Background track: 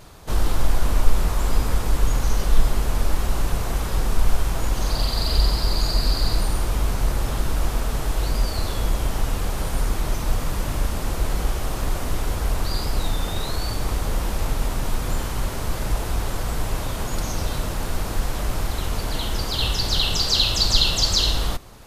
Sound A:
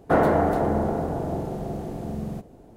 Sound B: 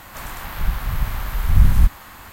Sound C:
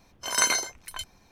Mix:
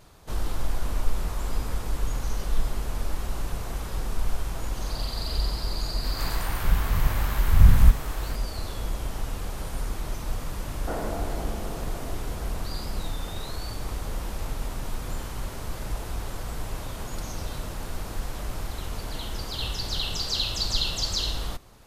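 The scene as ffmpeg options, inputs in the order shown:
ffmpeg -i bed.wav -i cue0.wav -i cue1.wav -filter_complex "[0:a]volume=-8dB[link_01];[2:a]atrim=end=2.32,asetpts=PTS-STARTPTS,volume=-1.5dB,afade=type=in:duration=0.004:curve=hsin,afade=type=out:start_time=2.316:duration=0.004:curve=hsin,adelay=6040[link_02];[1:a]atrim=end=2.76,asetpts=PTS-STARTPTS,volume=-13.5dB,afade=type=in:duration=0.004:curve=hsin,afade=type=out:start_time=2.756:duration=0.004:curve=hsin,adelay=10770[link_03];[link_01][link_02][link_03]amix=inputs=3:normalize=0" out.wav

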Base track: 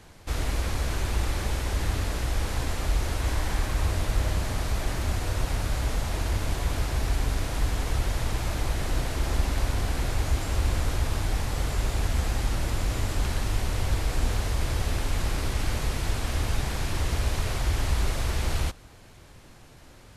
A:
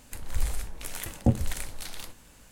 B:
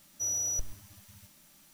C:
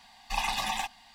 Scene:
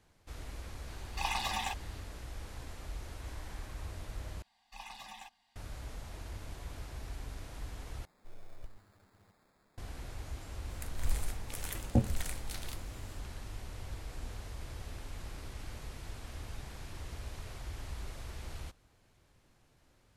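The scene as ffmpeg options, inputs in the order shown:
ffmpeg -i bed.wav -i cue0.wav -i cue1.wav -i cue2.wav -filter_complex "[3:a]asplit=2[link_01][link_02];[0:a]volume=-17dB[link_03];[2:a]acrusher=samples=15:mix=1:aa=0.000001[link_04];[link_03]asplit=3[link_05][link_06][link_07];[link_05]atrim=end=4.424[link_08];[link_02]atrim=end=1.14,asetpts=PTS-STARTPTS,volume=-18dB[link_09];[link_06]atrim=start=5.556:end=8.054[link_10];[link_04]atrim=end=1.73,asetpts=PTS-STARTPTS,volume=-11dB[link_11];[link_07]atrim=start=9.776[link_12];[link_01]atrim=end=1.14,asetpts=PTS-STARTPTS,volume=-4.5dB,afade=type=in:duration=0.004:curve=hsin,afade=type=out:start_time=1.136:duration=0.004:curve=hsin,adelay=870[link_13];[1:a]atrim=end=2.51,asetpts=PTS-STARTPTS,volume=-5dB,afade=type=in:duration=0.004:curve=hsin,afade=type=out:start_time=2.506:duration=0.004:curve=hsin,adelay=10690[link_14];[link_08][link_09]acrossfade=duration=0.004:curve1=hsin:curve2=hsin[link_15];[link_15][link_10]acrossfade=duration=0.004:curve1=hsin:curve2=hsin[link_16];[link_16][link_11]acrossfade=duration=0.004:curve1=hsin:curve2=hsin[link_17];[link_17][link_12]acrossfade=duration=0.004:curve1=hsin:curve2=hsin[link_18];[link_18][link_13][link_14]amix=inputs=3:normalize=0" out.wav

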